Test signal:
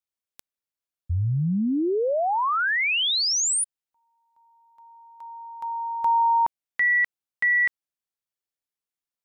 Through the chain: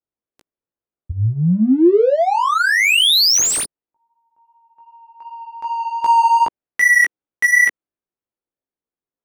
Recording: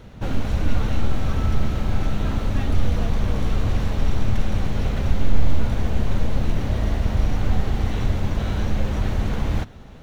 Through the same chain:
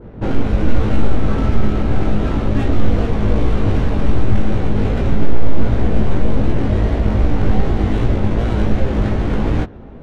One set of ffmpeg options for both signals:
ffmpeg -i in.wav -af "apsyclip=10dB,adynamicsmooth=sensitivity=2:basefreq=1400,equalizer=frequency=350:width=1:gain=7,flanger=delay=17:depth=2.3:speed=2.6,adynamicequalizer=threshold=0.0501:dfrequency=1700:dqfactor=0.7:tfrequency=1700:tqfactor=0.7:attack=5:release=100:ratio=0.375:range=2.5:mode=boostabove:tftype=highshelf,volume=-2dB" out.wav

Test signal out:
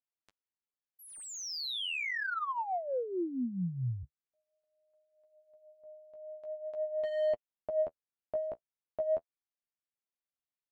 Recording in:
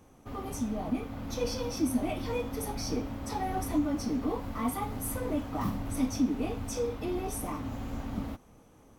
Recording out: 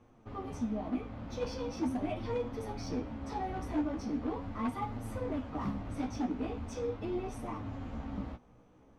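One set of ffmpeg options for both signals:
ffmpeg -i in.wav -af "aeval=exprs='0.0668*(abs(mod(val(0)/0.0668+3,4)-2)-1)':channel_layout=same,flanger=delay=8.3:depth=8.5:regen=20:speed=0.41:shape=sinusoidal,adynamicsmooth=sensitivity=3:basefreq=4200" out.wav

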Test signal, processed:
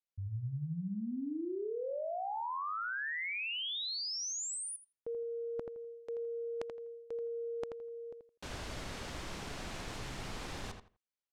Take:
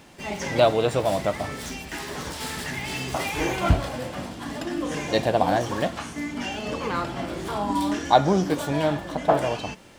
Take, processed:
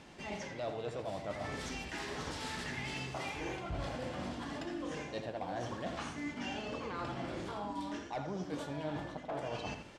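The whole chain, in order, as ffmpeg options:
ffmpeg -i in.wav -filter_complex "[0:a]volume=12.5dB,asoftclip=hard,volume=-12.5dB,lowpass=6800,areverse,acompressor=threshold=-32dB:ratio=10,areverse,asplit=2[link_01][link_02];[link_02]adelay=83,lowpass=frequency=3100:poles=1,volume=-6.5dB,asplit=2[link_03][link_04];[link_04]adelay=83,lowpass=frequency=3100:poles=1,volume=0.22,asplit=2[link_05][link_06];[link_06]adelay=83,lowpass=frequency=3100:poles=1,volume=0.22[link_07];[link_01][link_03][link_05][link_07]amix=inputs=4:normalize=0,volume=-5dB" out.wav

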